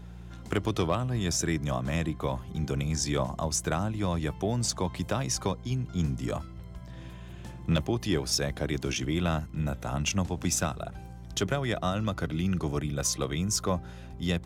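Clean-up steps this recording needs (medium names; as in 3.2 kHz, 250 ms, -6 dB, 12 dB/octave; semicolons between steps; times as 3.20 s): clip repair -17.5 dBFS; de-hum 58.8 Hz, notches 3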